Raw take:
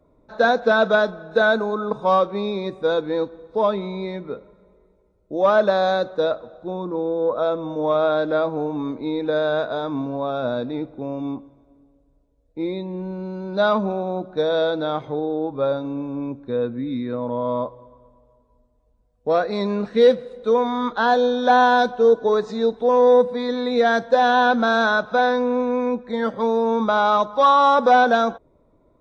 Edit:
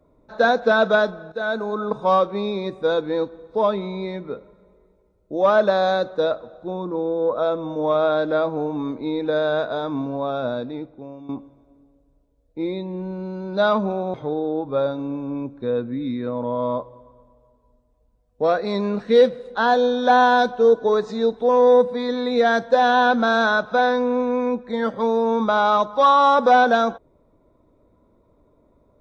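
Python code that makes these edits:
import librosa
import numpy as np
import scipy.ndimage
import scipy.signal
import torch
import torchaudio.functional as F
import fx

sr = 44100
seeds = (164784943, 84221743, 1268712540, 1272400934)

y = fx.edit(x, sr, fx.fade_in_from(start_s=1.32, length_s=0.5, floor_db=-14.0),
    fx.fade_out_to(start_s=10.34, length_s=0.95, floor_db=-14.5),
    fx.cut(start_s=14.14, length_s=0.86),
    fx.cut(start_s=20.41, length_s=0.54), tone=tone)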